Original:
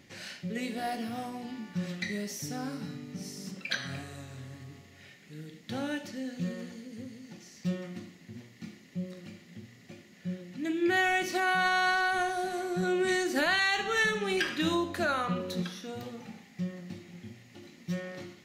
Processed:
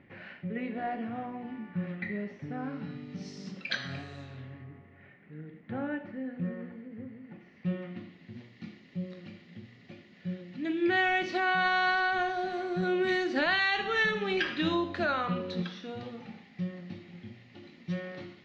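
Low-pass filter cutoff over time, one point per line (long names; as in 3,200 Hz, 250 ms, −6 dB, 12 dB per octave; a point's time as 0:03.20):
low-pass filter 24 dB per octave
0:02.57 2,300 Hz
0:03.27 4,900 Hz
0:04.22 4,900 Hz
0:04.73 2,000 Hz
0:07.18 2,000 Hz
0:08.39 4,300 Hz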